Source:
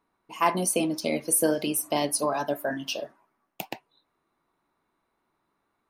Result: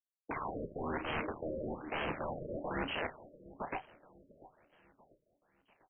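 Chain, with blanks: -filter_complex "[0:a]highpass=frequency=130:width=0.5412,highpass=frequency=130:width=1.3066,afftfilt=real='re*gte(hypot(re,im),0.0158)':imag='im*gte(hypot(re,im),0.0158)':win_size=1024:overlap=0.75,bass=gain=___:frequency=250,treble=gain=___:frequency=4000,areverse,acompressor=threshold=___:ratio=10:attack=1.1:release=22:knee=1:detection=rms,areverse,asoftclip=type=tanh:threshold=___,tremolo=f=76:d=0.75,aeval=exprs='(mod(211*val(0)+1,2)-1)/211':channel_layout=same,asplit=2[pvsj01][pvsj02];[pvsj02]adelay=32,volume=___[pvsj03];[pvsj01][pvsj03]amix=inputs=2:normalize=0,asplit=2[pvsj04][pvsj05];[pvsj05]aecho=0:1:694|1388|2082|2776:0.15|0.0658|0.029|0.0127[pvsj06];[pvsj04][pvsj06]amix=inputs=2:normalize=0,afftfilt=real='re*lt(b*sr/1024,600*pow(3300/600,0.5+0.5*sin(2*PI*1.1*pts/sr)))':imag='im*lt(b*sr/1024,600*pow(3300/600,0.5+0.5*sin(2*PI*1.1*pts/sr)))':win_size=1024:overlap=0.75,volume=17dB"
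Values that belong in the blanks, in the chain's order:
-9, -11, -40dB, -37.5dB, -10dB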